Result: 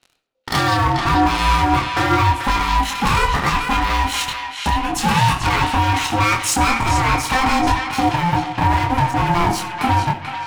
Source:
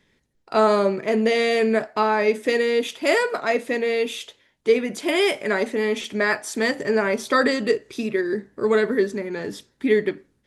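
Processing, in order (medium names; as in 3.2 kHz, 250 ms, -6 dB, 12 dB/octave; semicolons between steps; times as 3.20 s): peaking EQ 3.5 kHz +12 dB 1.1 oct, from 0.74 s -4.5 dB; level rider gain up to 7.5 dB; transient shaper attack +3 dB, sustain -4 dB; compression 5:1, threshold -27 dBFS, peak gain reduction 19.5 dB; waveshaping leveller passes 5; chorus 0.76 Hz, depth 6.2 ms; ring modulator 520 Hz; band-passed feedback delay 437 ms, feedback 45%, band-pass 2.4 kHz, level -4 dB; reverberation RT60 0.90 s, pre-delay 25 ms, DRR 12.5 dB; trim +5.5 dB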